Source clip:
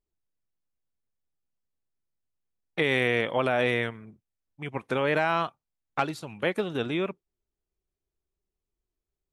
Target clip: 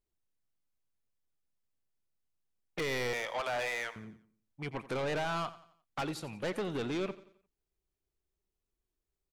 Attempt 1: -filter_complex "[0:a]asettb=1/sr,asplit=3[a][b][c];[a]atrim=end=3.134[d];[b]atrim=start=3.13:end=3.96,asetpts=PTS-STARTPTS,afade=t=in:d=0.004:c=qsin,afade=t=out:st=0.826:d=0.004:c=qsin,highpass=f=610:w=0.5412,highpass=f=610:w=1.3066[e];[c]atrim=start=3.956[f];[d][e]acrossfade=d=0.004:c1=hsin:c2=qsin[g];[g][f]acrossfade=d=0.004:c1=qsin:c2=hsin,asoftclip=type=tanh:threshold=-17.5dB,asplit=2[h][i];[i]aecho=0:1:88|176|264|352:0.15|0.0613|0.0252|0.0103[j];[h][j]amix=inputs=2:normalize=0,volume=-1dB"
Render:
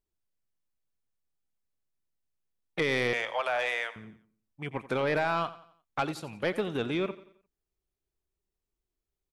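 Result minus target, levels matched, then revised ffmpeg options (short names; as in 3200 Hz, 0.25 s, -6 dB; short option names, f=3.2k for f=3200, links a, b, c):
soft clip: distortion -10 dB
-filter_complex "[0:a]asettb=1/sr,asplit=3[a][b][c];[a]atrim=end=3.134[d];[b]atrim=start=3.13:end=3.96,asetpts=PTS-STARTPTS,afade=t=in:d=0.004:c=qsin,afade=t=out:st=0.826:d=0.004:c=qsin,highpass=f=610:w=0.5412,highpass=f=610:w=1.3066[e];[c]atrim=start=3.956[f];[d][e]acrossfade=d=0.004:c1=hsin:c2=qsin[g];[g][f]acrossfade=d=0.004:c1=qsin:c2=hsin,asoftclip=type=tanh:threshold=-29.5dB,asplit=2[h][i];[i]aecho=0:1:88|176|264|352:0.15|0.0613|0.0252|0.0103[j];[h][j]amix=inputs=2:normalize=0,volume=-1dB"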